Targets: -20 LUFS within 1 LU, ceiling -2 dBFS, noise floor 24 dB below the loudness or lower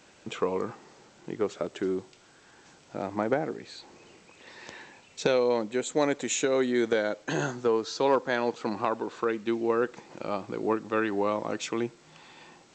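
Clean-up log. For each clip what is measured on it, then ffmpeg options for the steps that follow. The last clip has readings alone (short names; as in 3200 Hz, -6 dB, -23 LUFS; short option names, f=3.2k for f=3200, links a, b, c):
loudness -29.0 LUFS; peak -12.0 dBFS; loudness target -20.0 LUFS
-> -af "volume=9dB"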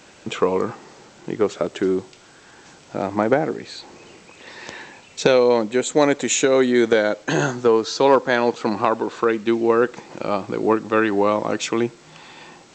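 loudness -20.0 LUFS; peak -3.0 dBFS; noise floor -48 dBFS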